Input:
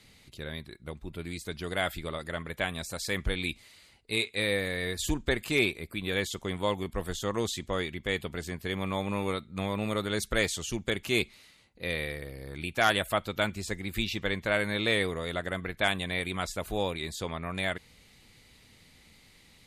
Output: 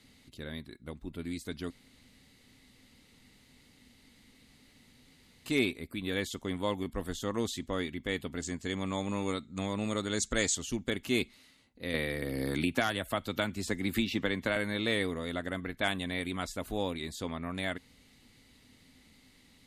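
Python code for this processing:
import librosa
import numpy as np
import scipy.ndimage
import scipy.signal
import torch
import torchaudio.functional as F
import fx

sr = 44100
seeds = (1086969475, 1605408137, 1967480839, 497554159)

y = fx.lowpass_res(x, sr, hz=7200.0, q=5.0, at=(8.42, 10.55))
y = fx.band_squash(y, sr, depth_pct=100, at=(11.94, 14.56))
y = fx.edit(y, sr, fx.room_tone_fill(start_s=1.7, length_s=3.76), tone=tone)
y = fx.peak_eq(y, sr, hz=260.0, db=11.0, octaves=0.37)
y = fx.notch(y, sr, hz=2400.0, q=22.0)
y = y * librosa.db_to_amplitude(-4.0)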